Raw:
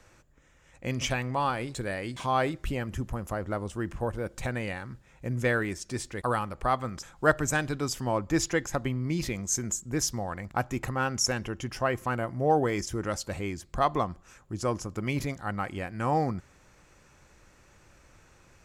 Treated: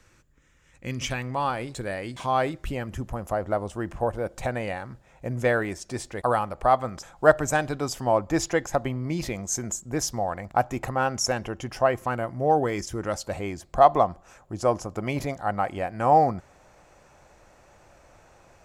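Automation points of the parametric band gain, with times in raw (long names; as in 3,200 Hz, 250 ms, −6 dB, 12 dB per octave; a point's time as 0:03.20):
parametric band 690 Hz 0.96 octaves
0:00.88 −7 dB
0:01.51 +4 dB
0:02.85 +4 dB
0:03.39 +10 dB
0:11.82 +10 dB
0:12.23 +4 dB
0:12.89 +4 dB
0:13.60 +12.5 dB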